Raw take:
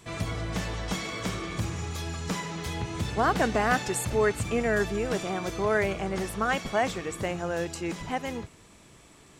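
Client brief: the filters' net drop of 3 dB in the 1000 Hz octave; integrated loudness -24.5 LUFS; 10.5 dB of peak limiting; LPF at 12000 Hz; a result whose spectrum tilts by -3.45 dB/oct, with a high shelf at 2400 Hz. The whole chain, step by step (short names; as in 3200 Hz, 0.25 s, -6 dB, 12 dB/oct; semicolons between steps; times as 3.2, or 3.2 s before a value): LPF 12000 Hz; bell 1000 Hz -6 dB; high shelf 2400 Hz +9 dB; gain +7 dB; limiter -14.5 dBFS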